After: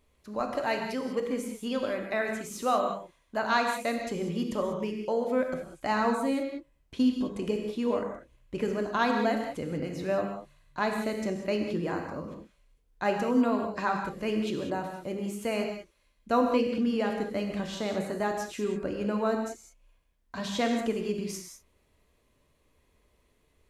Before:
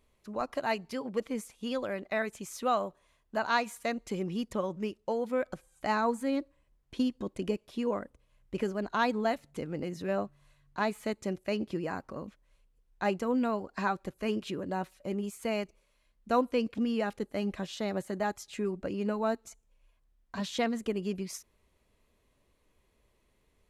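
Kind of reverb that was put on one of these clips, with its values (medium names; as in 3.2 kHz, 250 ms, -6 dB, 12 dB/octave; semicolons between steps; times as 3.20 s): gated-style reverb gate 220 ms flat, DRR 2.5 dB; trim +1 dB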